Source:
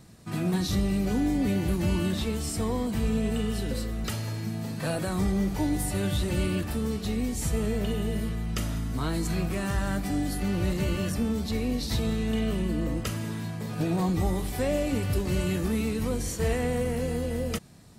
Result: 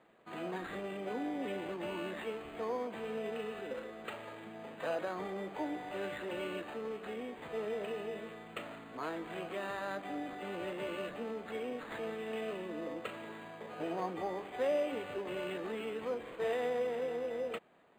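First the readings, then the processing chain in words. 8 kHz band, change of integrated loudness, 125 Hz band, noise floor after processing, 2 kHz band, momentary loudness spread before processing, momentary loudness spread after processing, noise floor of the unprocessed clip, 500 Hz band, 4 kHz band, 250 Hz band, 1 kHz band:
-24.0 dB, -11.0 dB, -25.5 dB, -51 dBFS, -5.5 dB, 5 LU, 9 LU, -35 dBFS, -4.5 dB, -12.0 dB, -15.5 dB, -4.0 dB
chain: Chebyshev band-pass 480–3000 Hz, order 2; decimation joined by straight lines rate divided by 8×; gain -2.5 dB

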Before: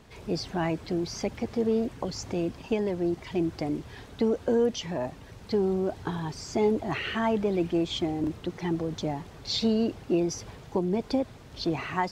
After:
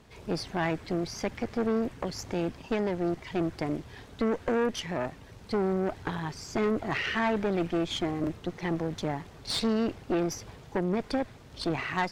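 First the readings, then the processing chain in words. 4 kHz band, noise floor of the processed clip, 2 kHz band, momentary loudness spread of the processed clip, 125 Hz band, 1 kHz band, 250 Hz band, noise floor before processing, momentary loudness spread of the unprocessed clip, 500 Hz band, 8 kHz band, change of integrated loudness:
-1.5 dB, -50 dBFS, +3.5 dB, 7 LU, -1.5 dB, +0.5 dB, -2.0 dB, -48 dBFS, 8 LU, -2.5 dB, -1.5 dB, -1.5 dB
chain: tube stage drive 25 dB, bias 0.8; dynamic EQ 1900 Hz, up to +6 dB, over -53 dBFS, Q 1.6; gain +2.5 dB

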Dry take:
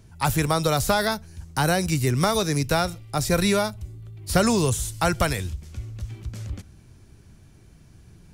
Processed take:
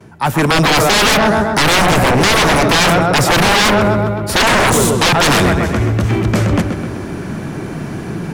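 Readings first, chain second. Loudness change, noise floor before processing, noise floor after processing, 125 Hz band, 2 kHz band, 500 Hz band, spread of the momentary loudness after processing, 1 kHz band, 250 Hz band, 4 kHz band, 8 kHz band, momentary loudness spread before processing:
+11.5 dB, -51 dBFS, -25 dBFS, +10.0 dB, +16.0 dB, +11.0 dB, 14 LU, +13.5 dB, +11.0 dB, +15.5 dB, +11.0 dB, 15 LU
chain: gate with hold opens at -45 dBFS; reverse; compressor 6:1, threshold -30 dBFS, peak gain reduction 15.5 dB; reverse; three-band isolator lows -23 dB, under 160 Hz, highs -14 dB, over 2200 Hz; AGC gain up to 13.5 dB; on a send: darkening echo 0.129 s, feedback 59%, low-pass 4800 Hz, level -10 dB; on the sum: sine folder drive 17 dB, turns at -8 dBFS

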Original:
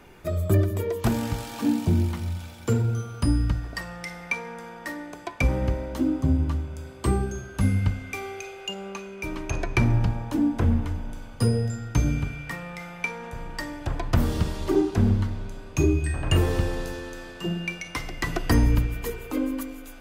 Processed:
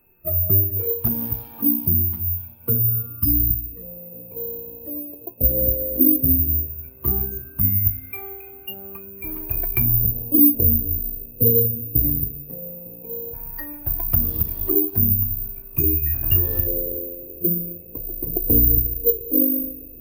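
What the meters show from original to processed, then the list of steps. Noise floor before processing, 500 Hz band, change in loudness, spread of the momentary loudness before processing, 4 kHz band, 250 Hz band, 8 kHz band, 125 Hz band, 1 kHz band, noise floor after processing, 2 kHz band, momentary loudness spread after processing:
-42 dBFS, +0.5 dB, +8.0 dB, 13 LU, n/a, 0.0 dB, under -10 dB, -1.5 dB, under -10 dB, -42 dBFS, -11.0 dB, 17 LU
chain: spectral gain 3.15–3.83, 350–990 Hz -11 dB; notch 6000 Hz, Q 8.2; low-pass opened by the level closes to 1900 Hz, open at -16 dBFS; compressor 2:1, threshold -25 dBFS, peak gain reduction 6 dB; swung echo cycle 1.443 s, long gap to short 3:1, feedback 67%, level -21 dB; LFO low-pass square 0.15 Hz 490–5800 Hz; whine 2600 Hz -56 dBFS; careless resampling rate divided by 3×, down none, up zero stuff; spectral expander 1.5:1; gain +1.5 dB

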